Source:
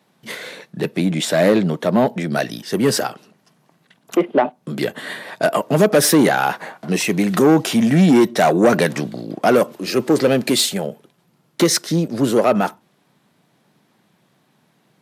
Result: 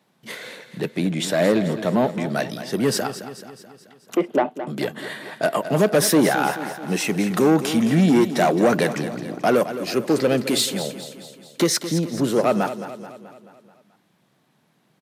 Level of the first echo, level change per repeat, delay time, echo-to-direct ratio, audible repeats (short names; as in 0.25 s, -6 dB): -12.0 dB, -5.5 dB, 0.216 s, -10.5 dB, 5